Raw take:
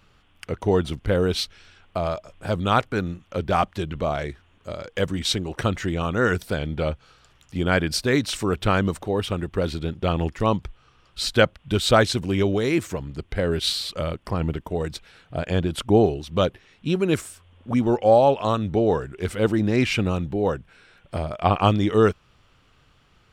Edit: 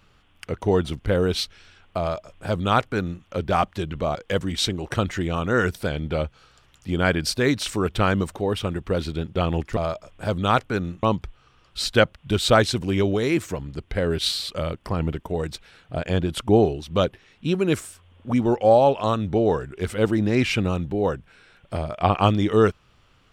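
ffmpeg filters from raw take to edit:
-filter_complex "[0:a]asplit=4[a][b][c][d];[a]atrim=end=4.152[e];[b]atrim=start=4.818:end=10.442[f];[c]atrim=start=1.988:end=3.252[g];[d]atrim=start=10.438[h];[e][f]acrossfade=d=0.004:c1=hsin:c2=hsin[i];[i][g]acrossfade=d=0.004:c1=hsin:c2=hsin[j];[j][h]acrossfade=d=0.004:c1=hsin:c2=hsin"

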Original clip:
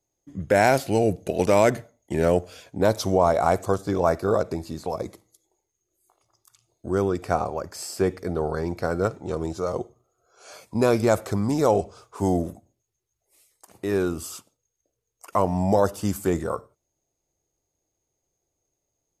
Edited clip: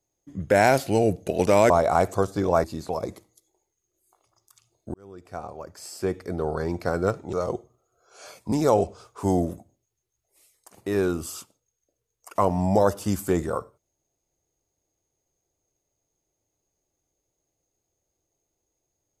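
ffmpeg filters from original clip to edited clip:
-filter_complex "[0:a]asplit=6[a][b][c][d][e][f];[a]atrim=end=1.702[g];[b]atrim=start=3.208:end=4.152[h];[c]atrim=start=4.608:end=6.91,asetpts=PTS-STARTPTS,afade=t=out:st=2.298:d=0.004:c=hsin[i];[d]atrim=start=6.91:end=9.302,asetpts=PTS-STARTPTS,afade=t=in:d=1.77[j];[e]atrim=start=9.588:end=10.782[k];[f]atrim=start=11.488[l];[g][h]acrossfade=d=0.004:c1=hsin:c2=hsin[m];[i][j]concat=n=2:v=0:a=1[n];[m][n]acrossfade=d=0.004:c1=hsin:c2=hsin[o];[o][k]acrossfade=d=0.004:c1=hsin:c2=hsin[p];[p][l]acrossfade=d=0.004:c1=hsin:c2=hsin"

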